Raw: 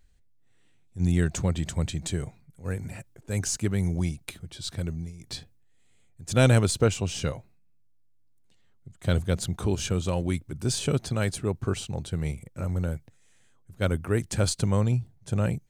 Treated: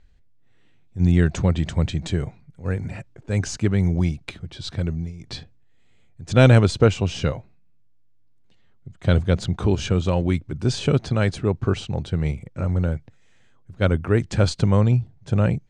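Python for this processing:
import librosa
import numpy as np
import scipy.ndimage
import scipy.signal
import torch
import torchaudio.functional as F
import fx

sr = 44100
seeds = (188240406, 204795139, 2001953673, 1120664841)

y = fx.air_absorb(x, sr, metres=130.0)
y = F.gain(torch.from_numpy(y), 6.5).numpy()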